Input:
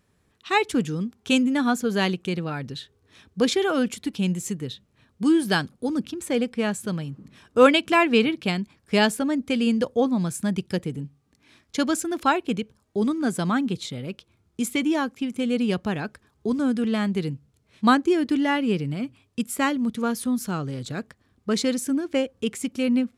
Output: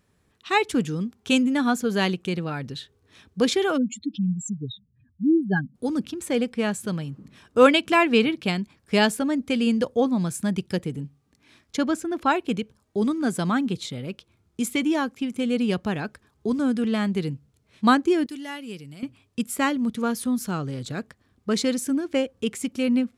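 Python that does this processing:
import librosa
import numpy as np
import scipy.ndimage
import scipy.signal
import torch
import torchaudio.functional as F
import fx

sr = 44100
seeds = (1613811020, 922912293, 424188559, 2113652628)

y = fx.spec_expand(x, sr, power=3.2, at=(3.76, 5.74), fade=0.02)
y = fx.high_shelf(y, sr, hz=3300.0, db=-11.0, at=(11.76, 12.29), fade=0.02)
y = fx.pre_emphasis(y, sr, coefficient=0.8, at=(18.26, 19.03))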